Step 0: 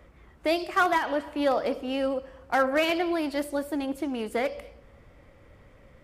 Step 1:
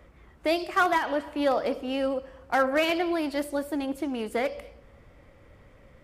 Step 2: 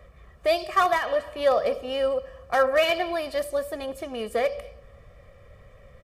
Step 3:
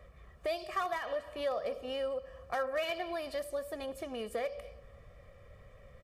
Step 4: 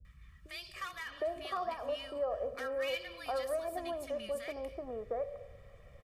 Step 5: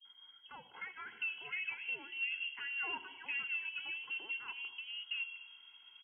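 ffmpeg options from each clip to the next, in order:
ffmpeg -i in.wav -af anull out.wav
ffmpeg -i in.wav -af "aecho=1:1:1.7:0.77" out.wav
ffmpeg -i in.wav -af "acompressor=threshold=-32dB:ratio=2,volume=-5dB" out.wav
ffmpeg -i in.wav -filter_complex "[0:a]acrossover=split=240|1300[link_01][link_02][link_03];[link_03]adelay=50[link_04];[link_02]adelay=760[link_05];[link_01][link_05][link_04]amix=inputs=3:normalize=0" out.wav
ffmpeg -i in.wav -af "lowpass=frequency=2800:width_type=q:width=0.5098,lowpass=frequency=2800:width_type=q:width=0.6013,lowpass=frequency=2800:width_type=q:width=0.9,lowpass=frequency=2800:width_type=q:width=2.563,afreqshift=-3300,volume=-4dB" out.wav

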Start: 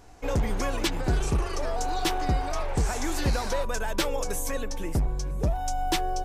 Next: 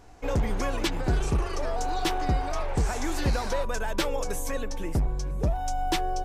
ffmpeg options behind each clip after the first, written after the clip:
ffmpeg -i in.wav -af "highshelf=frequency=5200:gain=-4.5" out.wav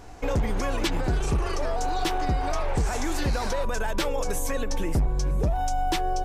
ffmpeg -i in.wav -af "alimiter=level_in=1dB:limit=-24dB:level=0:latency=1:release=104,volume=-1dB,volume=7dB" out.wav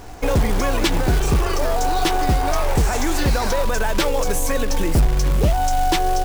ffmpeg -i in.wav -af "acrusher=bits=4:mode=log:mix=0:aa=0.000001,volume=7dB" out.wav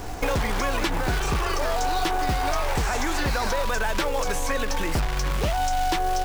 ffmpeg -i in.wav -filter_complex "[0:a]acrossover=split=820|1900|5900[link_01][link_02][link_03][link_04];[link_01]acompressor=threshold=-30dB:ratio=4[link_05];[link_02]acompressor=threshold=-33dB:ratio=4[link_06];[link_03]acompressor=threshold=-39dB:ratio=4[link_07];[link_04]acompressor=threshold=-46dB:ratio=4[link_08];[link_05][link_06][link_07][link_08]amix=inputs=4:normalize=0,volume=4dB" out.wav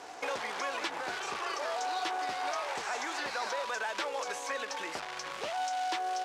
ffmpeg -i in.wav -af "highpass=510,lowpass=7100,volume=-7dB" out.wav

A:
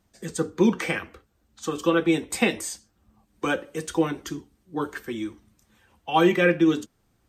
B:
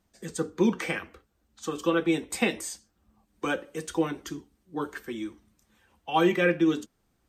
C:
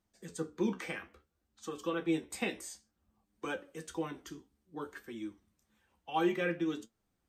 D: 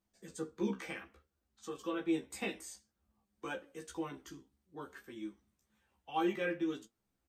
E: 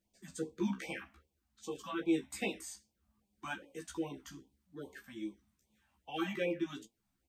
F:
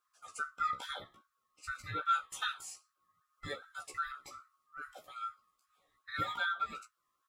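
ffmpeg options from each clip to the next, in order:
ffmpeg -i in.wav -af "equalizer=frequency=110:width_type=o:width=0.49:gain=-5.5,volume=-3.5dB" out.wav
ffmpeg -i in.wav -af "flanger=delay=8.6:depth=7.9:regen=60:speed=0.58:shape=triangular,volume=-5dB" out.wav
ffmpeg -i in.wav -filter_complex "[0:a]asplit=2[link_01][link_02];[link_02]adelay=15,volume=-2.5dB[link_03];[link_01][link_03]amix=inputs=2:normalize=0,volume=-5dB" out.wav
ffmpeg -i in.wav -af "afftfilt=real='re*(1-between(b*sr/1024,380*pow(1600/380,0.5+0.5*sin(2*PI*2.5*pts/sr))/1.41,380*pow(1600/380,0.5+0.5*sin(2*PI*2.5*pts/sr))*1.41))':imag='im*(1-between(b*sr/1024,380*pow(1600/380,0.5+0.5*sin(2*PI*2.5*pts/sr))/1.41,380*pow(1600/380,0.5+0.5*sin(2*PI*2.5*pts/sr))*1.41))':win_size=1024:overlap=0.75,volume=2dB" out.wav
ffmpeg -i in.wav -af "afftfilt=real='real(if(lt(b,960),b+48*(1-2*mod(floor(b/48),2)),b),0)':imag='imag(if(lt(b,960),b+48*(1-2*mod(floor(b/48),2)),b),0)':win_size=2048:overlap=0.75" out.wav

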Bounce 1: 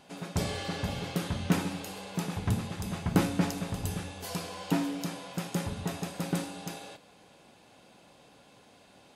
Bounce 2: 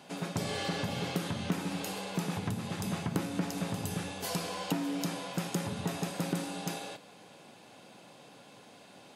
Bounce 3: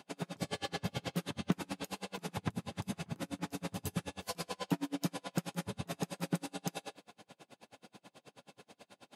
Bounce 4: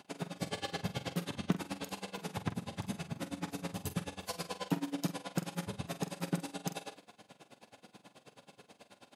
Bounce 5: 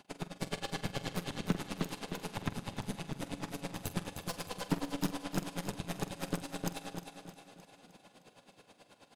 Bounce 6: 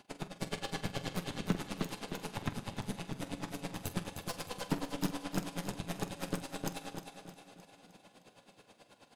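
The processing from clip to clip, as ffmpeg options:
ffmpeg -i in.wav -af "acompressor=threshold=-32dB:ratio=6,highpass=frequency=110:width=0.5412,highpass=frequency=110:width=1.3066,volume=3.5dB" out.wav
ffmpeg -i in.wav -af "aeval=exprs='val(0)*pow(10,-36*(0.5-0.5*cos(2*PI*9.3*n/s))/20)':channel_layout=same,volume=2dB" out.wav
ffmpeg -i in.wav -filter_complex "[0:a]asplit=2[link_01][link_02];[link_02]adelay=46,volume=-11.5dB[link_03];[link_01][link_03]amix=inputs=2:normalize=0" out.wav
ffmpeg -i in.wav -af "aecho=1:1:308|616|924|1232|1540|1848:0.531|0.26|0.127|0.0625|0.0306|0.015,aeval=exprs='0.178*(cos(1*acos(clip(val(0)/0.178,-1,1)))-cos(1*PI/2))+0.0501*(cos(2*acos(clip(val(0)/0.178,-1,1)))-cos(2*PI/2))+0.0251*(cos(3*acos(clip(val(0)/0.178,-1,1)))-cos(3*PI/2))+0.00631*(cos(7*acos(clip(val(0)/0.178,-1,1)))-cos(7*PI/2))+0.0141*(cos(8*acos(clip(val(0)/0.178,-1,1)))-cos(8*PI/2))':channel_layout=same,asoftclip=type=tanh:threshold=-26.5dB,volume=6.5dB" out.wav
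ffmpeg -i in.wav -af "flanger=delay=8.4:depth=1.9:regen=-72:speed=0.44:shape=sinusoidal,volume=4dB" out.wav

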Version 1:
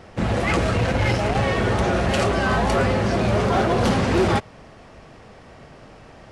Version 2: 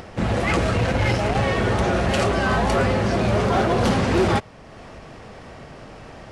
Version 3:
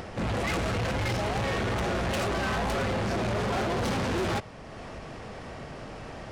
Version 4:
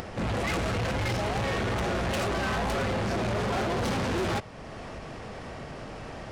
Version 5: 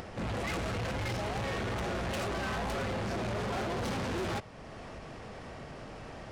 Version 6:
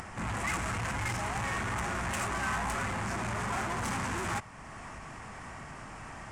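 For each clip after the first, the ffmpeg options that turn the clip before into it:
ffmpeg -i in.wav -af "acompressor=mode=upward:threshold=-33dB:ratio=2.5" out.wav
ffmpeg -i in.wav -af "asoftclip=type=tanh:threshold=-26.5dB" out.wav
ffmpeg -i in.wav -af "acompressor=mode=upward:threshold=-36dB:ratio=2.5" out.wav
ffmpeg -i in.wav -af "asoftclip=type=tanh:threshold=-21dB,volume=-5dB" out.wav
ffmpeg -i in.wav -af "equalizer=frequency=500:width_type=o:width=1:gain=-10,equalizer=frequency=1000:width_type=o:width=1:gain=7,equalizer=frequency=2000:width_type=o:width=1:gain=5,equalizer=frequency=4000:width_type=o:width=1:gain=-8,equalizer=frequency=8000:width_type=o:width=1:gain=12" out.wav

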